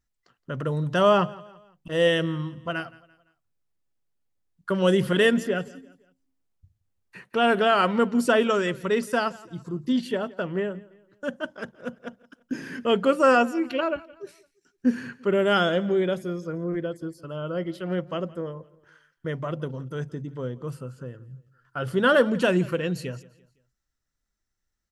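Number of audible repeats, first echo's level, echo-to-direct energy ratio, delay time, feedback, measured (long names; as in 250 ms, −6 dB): 2, −21.5 dB, −20.5 dB, 170 ms, 41%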